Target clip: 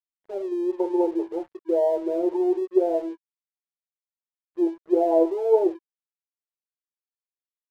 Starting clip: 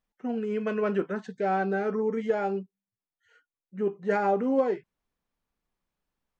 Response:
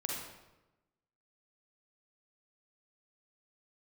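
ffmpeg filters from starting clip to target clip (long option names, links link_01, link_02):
-af "afftfilt=real='re*between(b*sr/4096,390,1200)':imag='im*between(b*sr/4096,390,1200)':win_size=4096:overlap=0.75,asetrate=36603,aresample=44100,aeval=exprs='sgn(val(0))*max(abs(val(0))-0.00168,0)':channel_layout=same,volume=6.5dB"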